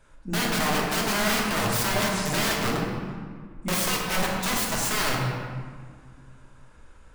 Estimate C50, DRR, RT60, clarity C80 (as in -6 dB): 1.0 dB, -3.0 dB, 1.9 s, 2.5 dB